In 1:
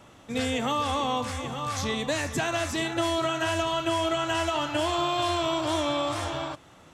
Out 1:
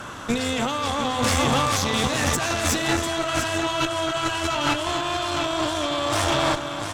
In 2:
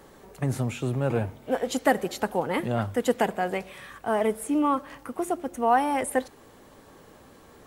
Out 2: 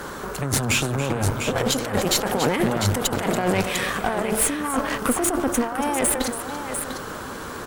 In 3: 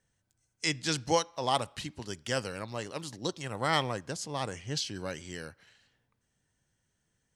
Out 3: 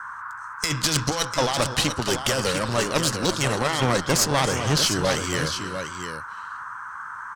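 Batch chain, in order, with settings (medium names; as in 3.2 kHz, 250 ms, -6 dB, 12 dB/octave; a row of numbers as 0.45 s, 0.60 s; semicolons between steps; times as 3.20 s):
peaking EQ 6 kHz +3.5 dB 2.3 oct; compressor with a negative ratio -33 dBFS, ratio -1; multi-tap echo 282/698 ms -13.5/-8.5 dB; valve stage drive 28 dB, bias 0.8; band noise 940–1600 Hz -53 dBFS; normalise loudness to -23 LUFS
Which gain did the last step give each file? +13.0 dB, +14.0 dB, +17.0 dB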